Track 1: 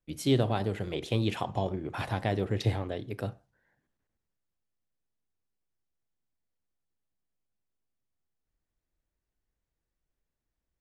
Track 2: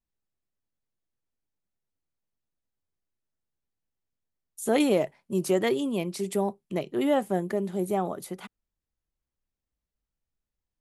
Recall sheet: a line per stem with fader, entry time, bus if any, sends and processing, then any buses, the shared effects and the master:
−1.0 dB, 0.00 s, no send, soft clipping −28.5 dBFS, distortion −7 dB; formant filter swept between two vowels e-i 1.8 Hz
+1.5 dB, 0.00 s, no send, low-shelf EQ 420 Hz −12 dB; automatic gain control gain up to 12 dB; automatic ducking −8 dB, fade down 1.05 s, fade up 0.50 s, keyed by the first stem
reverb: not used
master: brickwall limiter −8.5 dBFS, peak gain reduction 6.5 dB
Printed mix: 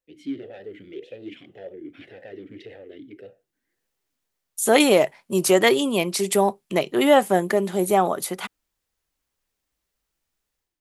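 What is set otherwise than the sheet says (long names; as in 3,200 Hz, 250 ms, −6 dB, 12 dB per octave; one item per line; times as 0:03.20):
stem 1 −1.0 dB → +7.0 dB
master: missing brickwall limiter −8.5 dBFS, peak gain reduction 6.5 dB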